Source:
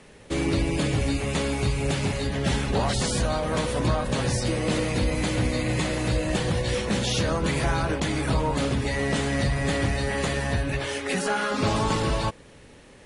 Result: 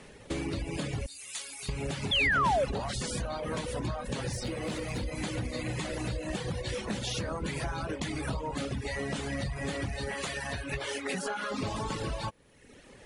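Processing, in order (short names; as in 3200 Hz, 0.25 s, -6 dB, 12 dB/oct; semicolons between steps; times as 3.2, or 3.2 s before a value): 1.06–1.69 pre-emphasis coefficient 0.97; reverb removal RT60 0.94 s; 10.14–10.72 low shelf 500 Hz -10.5 dB; compressor 6:1, threshold -31 dBFS, peak gain reduction 10.5 dB; 2.11–2.65 painted sound fall 500–3600 Hz -26 dBFS; 4.33–5.03 overloaded stage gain 29 dB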